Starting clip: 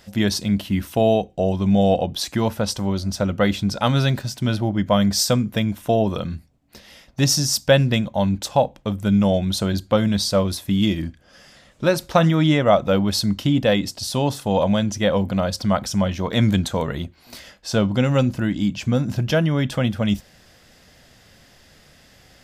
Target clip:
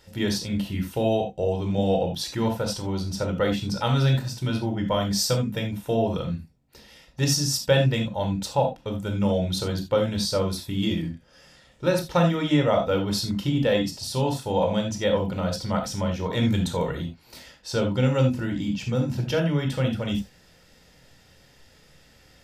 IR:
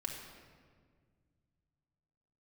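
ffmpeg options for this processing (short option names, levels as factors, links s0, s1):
-filter_complex "[1:a]atrim=start_sample=2205,atrim=end_sample=6615,asetrate=70560,aresample=44100[s0];[0:a][s0]afir=irnorm=-1:irlink=0"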